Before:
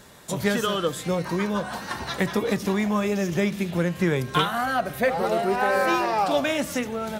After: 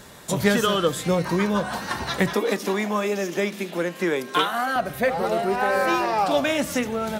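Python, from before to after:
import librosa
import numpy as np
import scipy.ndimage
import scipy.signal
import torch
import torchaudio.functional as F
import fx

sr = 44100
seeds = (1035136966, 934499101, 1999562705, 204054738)

y = fx.rider(x, sr, range_db=4, speed_s=2.0)
y = fx.highpass(y, sr, hz=240.0, slope=24, at=(2.33, 4.76))
y = F.gain(torch.from_numpy(y), 1.5).numpy()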